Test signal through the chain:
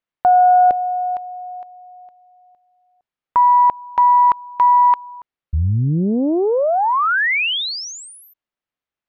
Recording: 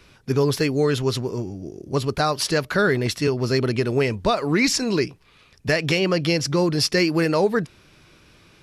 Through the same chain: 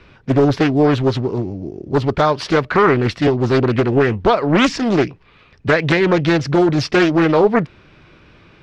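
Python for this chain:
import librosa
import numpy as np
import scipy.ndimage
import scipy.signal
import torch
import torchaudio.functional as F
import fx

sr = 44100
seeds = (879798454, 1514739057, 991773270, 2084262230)

y = scipy.signal.sosfilt(scipy.signal.butter(2, 2800.0, 'lowpass', fs=sr, output='sos'), x)
y = fx.doppler_dist(y, sr, depth_ms=0.6)
y = F.gain(torch.from_numpy(y), 6.5).numpy()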